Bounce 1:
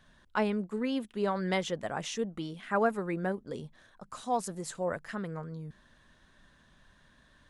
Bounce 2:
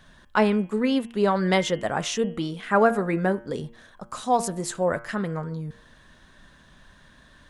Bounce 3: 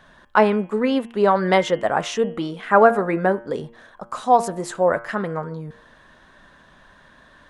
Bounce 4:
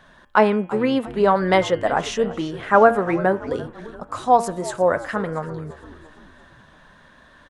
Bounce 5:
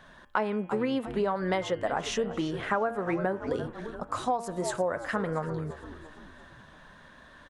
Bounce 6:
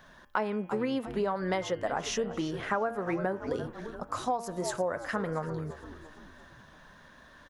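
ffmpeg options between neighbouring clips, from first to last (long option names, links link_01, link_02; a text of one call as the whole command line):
ffmpeg -i in.wav -af "bandreject=frequency=116.7:width_type=h:width=4,bandreject=frequency=233.4:width_type=h:width=4,bandreject=frequency=350.1:width_type=h:width=4,bandreject=frequency=466.8:width_type=h:width=4,bandreject=frequency=583.5:width_type=h:width=4,bandreject=frequency=700.2:width_type=h:width=4,bandreject=frequency=816.9:width_type=h:width=4,bandreject=frequency=933.6:width_type=h:width=4,bandreject=frequency=1050.3:width_type=h:width=4,bandreject=frequency=1167:width_type=h:width=4,bandreject=frequency=1283.7:width_type=h:width=4,bandreject=frequency=1400.4:width_type=h:width=4,bandreject=frequency=1517.1:width_type=h:width=4,bandreject=frequency=1633.8:width_type=h:width=4,bandreject=frequency=1750.5:width_type=h:width=4,bandreject=frequency=1867.2:width_type=h:width=4,bandreject=frequency=1983.9:width_type=h:width=4,bandreject=frequency=2100.6:width_type=h:width=4,bandreject=frequency=2217.3:width_type=h:width=4,bandreject=frequency=2334:width_type=h:width=4,bandreject=frequency=2450.7:width_type=h:width=4,bandreject=frequency=2567.4:width_type=h:width=4,bandreject=frequency=2684.1:width_type=h:width=4,bandreject=frequency=2800.8:width_type=h:width=4,bandreject=frequency=2917.5:width_type=h:width=4,bandreject=frequency=3034.2:width_type=h:width=4,bandreject=frequency=3150.9:width_type=h:width=4,bandreject=frequency=3267.6:width_type=h:width=4,volume=9dB" out.wav
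ffmpeg -i in.wav -af "equalizer=frequency=820:width=0.34:gain=11,volume=-4dB" out.wav
ffmpeg -i in.wav -filter_complex "[0:a]asplit=6[link_01][link_02][link_03][link_04][link_05][link_06];[link_02]adelay=341,afreqshift=-79,volume=-17dB[link_07];[link_03]adelay=682,afreqshift=-158,volume=-22.7dB[link_08];[link_04]adelay=1023,afreqshift=-237,volume=-28.4dB[link_09];[link_05]adelay=1364,afreqshift=-316,volume=-34dB[link_10];[link_06]adelay=1705,afreqshift=-395,volume=-39.7dB[link_11];[link_01][link_07][link_08][link_09][link_10][link_11]amix=inputs=6:normalize=0" out.wav
ffmpeg -i in.wav -af "acompressor=threshold=-23dB:ratio=8,volume=-2dB" out.wav
ffmpeg -i in.wav -af "aexciter=amount=1.3:drive=6:freq=4900,volume=-2dB" out.wav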